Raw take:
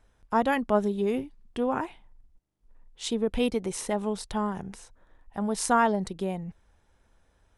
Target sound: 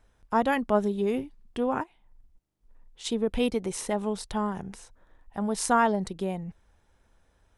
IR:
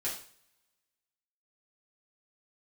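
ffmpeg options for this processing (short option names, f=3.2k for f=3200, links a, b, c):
-filter_complex "[0:a]asplit=3[a][b][c];[a]afade=t=out:st=1.82:d=0.02[d];[b]acompressor=threshold=-44dB:ratio=10,afade=t=in:st=1.82:d=0.02,afade=t=out:st=3.04:d=0.02[e];[c]afade=t=in:st=3.04:d=0.02[f];[d][e][f]amix=inputs=3:normalize=0"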